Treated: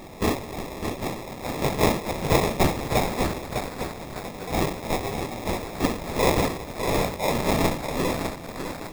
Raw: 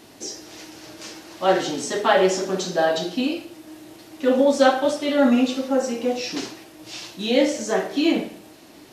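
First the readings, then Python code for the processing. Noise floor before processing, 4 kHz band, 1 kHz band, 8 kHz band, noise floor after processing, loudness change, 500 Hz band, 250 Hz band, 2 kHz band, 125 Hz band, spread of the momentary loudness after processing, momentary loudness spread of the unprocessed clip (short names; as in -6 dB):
-47 dBFS, -4.0 dB, -1.5 dB, -1.5 dB, -38 dBFS, -5.0 dB, -5.5 dB, -5.5 dB, -2.0 dB, +11.5 dB, 11 LU, 20 LU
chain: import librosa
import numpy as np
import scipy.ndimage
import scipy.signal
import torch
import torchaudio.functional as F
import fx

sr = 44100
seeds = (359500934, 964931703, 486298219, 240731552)

p1 = fx.rider(x, sr, range_db=10, speed_s=0.5)
p2 = x + (p1 * librosa.db_to_amplitude(-2.0))
p3 = scipy.signal.sosfilt(scipy.signal.ellip(3, 1.0, 80, [130.0, 4000.0], 'bandstop', fs=sr, output='sos'), p2)
p4 = fx.riaa(p3, sr, side='recording')
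p5 = fx.wow_flutter(p4, sr, seeds[0], rate_hz=2.1, depth_cents=18.0)
p6 = fx.sample_hold(p5, sr, seeds[1], rate_hz=1500.0, jitter_pct=0)
p7 = p6 + fx.echo_single(p6, sr, ms=831, db=-22.5, dry=0)
p8 = fx.echo_crushed(p7, sr, ms=603, feedback_pct=55, bits=5, wet_db=-5)
y = p8 * librosa.db_to_amplitude(-1.5)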